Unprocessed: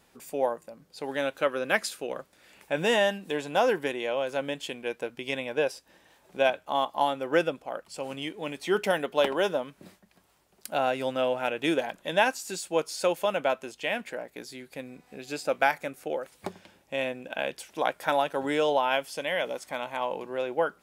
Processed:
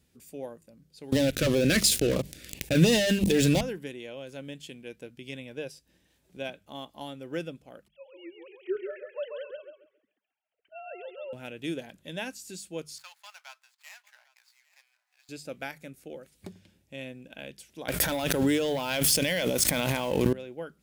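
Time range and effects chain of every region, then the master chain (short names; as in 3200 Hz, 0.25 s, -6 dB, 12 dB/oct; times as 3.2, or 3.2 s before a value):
1.12–3.61 sample leveller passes 5 + LFO notch saw down 2.9 Hz 740–1700 Hz + fast leveller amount 50%
7.88–11.33 sine-wave speech + thinning echo 0.135 s, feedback 26%, level -4 dB
12.98–15.29 median filter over 15 samples + steep high-pass 840 Hz 48 dB/oct + echo 0.802 s -21 dB
17.88–20.33 sample leveller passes 2 + high shelf 11000 Hz +9.5 dB + fast leveller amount 100%
whole clip: HPF 50 Hz; passive tone stack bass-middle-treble 10-0-1; notches 50/100/150/200 Hz; gain +14.5 dB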